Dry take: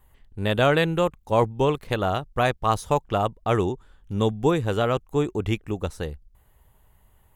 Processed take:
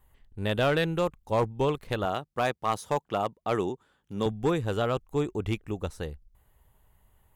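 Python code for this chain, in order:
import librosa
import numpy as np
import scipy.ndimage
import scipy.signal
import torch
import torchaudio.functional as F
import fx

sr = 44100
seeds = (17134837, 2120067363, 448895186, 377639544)

y = fx.highpass(x, sr, hz=160.0, slope=12, at=(2.05, 4.26))
y = np.clip(10.0 ** (13.0 / 20.0) * y, -1.0, 1.0) / 10.0 ** (13.0 / 20.0)
y = y * 10.0 ** (-4.5 / 20.0)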